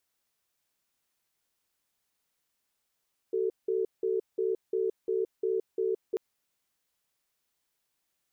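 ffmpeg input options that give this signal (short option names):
-f lavfi -i "aevalsrc='0.0376*(sin(2*PI*379*t)+sin(2*PI*443*t))*clip(min(mod(t,0.35),0.17-mod(t,0.35))/0.005,0,1)':d=2.84:s=44100"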